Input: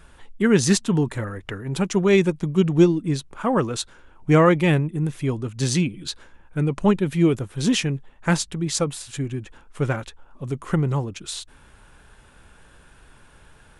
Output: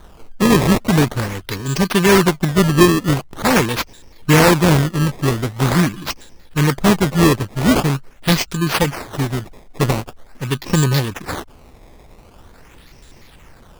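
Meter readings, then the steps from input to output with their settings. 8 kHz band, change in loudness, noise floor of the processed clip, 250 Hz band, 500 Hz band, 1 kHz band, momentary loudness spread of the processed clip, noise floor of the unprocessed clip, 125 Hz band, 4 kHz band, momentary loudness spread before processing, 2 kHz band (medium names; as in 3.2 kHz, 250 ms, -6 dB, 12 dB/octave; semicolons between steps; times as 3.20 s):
+4.5 dB, +5.5 dB, -45 dBFS, +5.0 dB, +4.0 dB, +9.0 dB, 13 LU, -52 dBFS, +6.0 dB, +8.0 dB, 15 LU, +9.0 dB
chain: bit-reversed sample order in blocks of 32 samples; in parallel at +3 dB: peak limiter -13 dBFS, peak gain reduction 8 dB; on the sum: decimation with a swept rate 17×, swing 160% 0.44 Hz; trim -1 dB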